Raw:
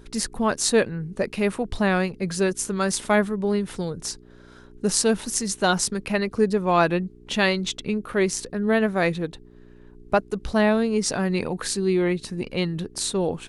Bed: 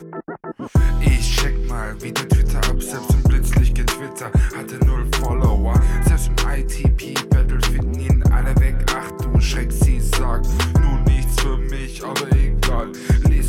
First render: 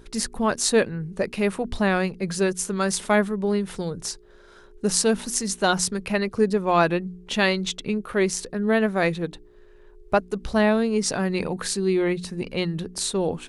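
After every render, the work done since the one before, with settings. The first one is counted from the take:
hum removal 60 Hz, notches 5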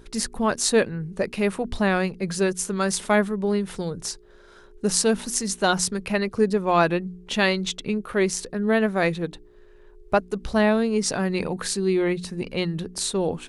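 no processing that can be heard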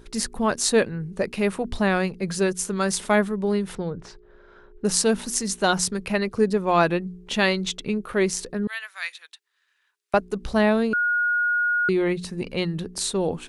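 0:03.75–0:04.85: low-pass filter 2,300 Hz
0:08.67–0:10.14: Bessel high-pass filter 2,100 Hz, order 4
0:10.93–0:11.89: beep over 1,440 Hz −19 dBFS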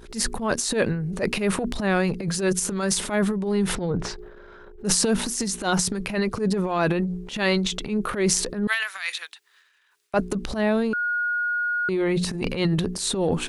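speech leveller within 5 dB 0.5 s
transient designer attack −11 dB, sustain +9 dB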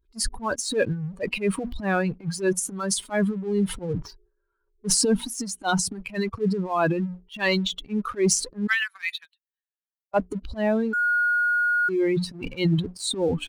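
spectral dynamics exaggerated over time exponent 2
leveller curve on the samples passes 1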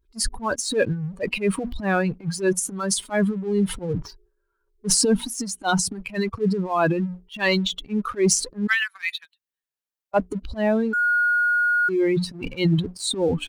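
level +2 dB

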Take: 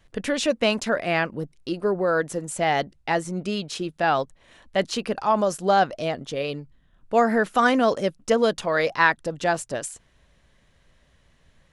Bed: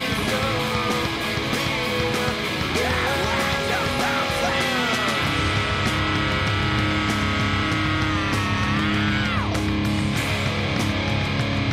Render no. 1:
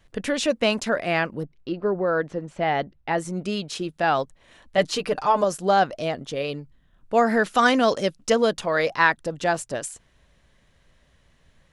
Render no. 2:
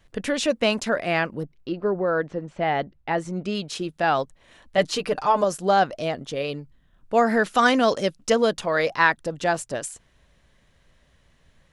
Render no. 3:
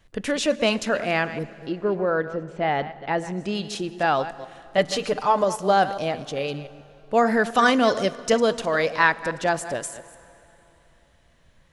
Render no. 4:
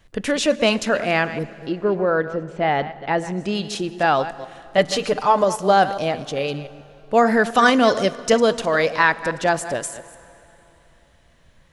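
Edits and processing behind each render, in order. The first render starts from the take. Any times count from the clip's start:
0:01.43–0:03.18: high-frequency loss of the air 240 metres; 0:04.77–0:05.44: comb filter 6.7 ms, depth 78%; 0:07.26–0:08.38: parametric band 4,700 Hz +6 dB 2 octaves
0:02.02–0:03.55: high-frequency loss of the air 66 metres
delay that plays each chunk backwards 139 ms, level −13 dB; dense smooth reverb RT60 3.3 s, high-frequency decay 0.8×, DRR 17.5 dB
level +3.5 dB; brickwall limiter −3 dBFS, peak gain reduction 2.5 dB

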